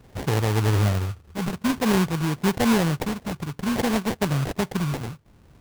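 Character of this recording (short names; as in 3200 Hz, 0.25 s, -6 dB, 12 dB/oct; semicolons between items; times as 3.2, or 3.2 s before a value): phasing stages 8, 0.53 Hz, lowest notch 500–4100 Hz; aliases and images of a low sample rate 1300 Hz, jitter 20%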